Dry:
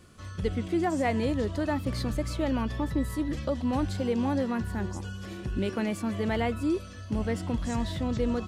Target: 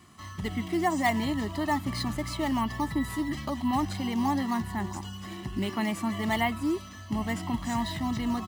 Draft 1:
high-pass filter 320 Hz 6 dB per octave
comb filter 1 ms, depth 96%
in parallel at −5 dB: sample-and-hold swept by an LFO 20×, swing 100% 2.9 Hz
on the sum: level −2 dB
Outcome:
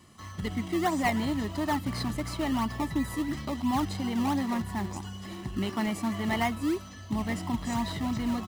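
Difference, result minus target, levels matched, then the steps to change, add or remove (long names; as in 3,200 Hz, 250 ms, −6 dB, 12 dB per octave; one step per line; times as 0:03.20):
sample-and-hold swept by an LFO: distortion +9 dB
change: sample-and-hold swept by an LFO 6×, swing 100% 2.9 Hz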